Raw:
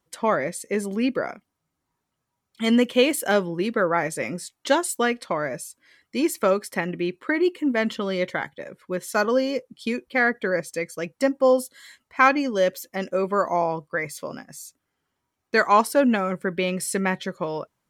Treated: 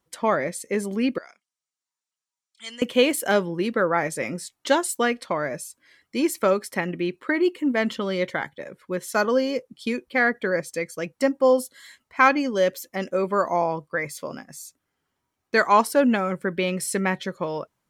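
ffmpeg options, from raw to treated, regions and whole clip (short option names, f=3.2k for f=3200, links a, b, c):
-filter_complex "[0:a]asettb=1/sr,asplit=3[a][b][c];[a]atrim=end=1.184[d];[b]atrim=start=1.18:end=2.82,asetpts=PTS-STARTPTS,afade=t=in:d=0.004:c=qsin,afade=t=out:st=1.636:d=0.004:c=qsin,lowpass=f=8.2k:w=0.5412,lowpass=f=8.2k:w=1.3066,aderivative[e];[c]atrim=start=2.816[f];[d][e]acrossfade=d=0.004:c1=hsin:c2=qsin[g];[g][f]acrossfade=d=0.004:c1=qsin:c2=hsin"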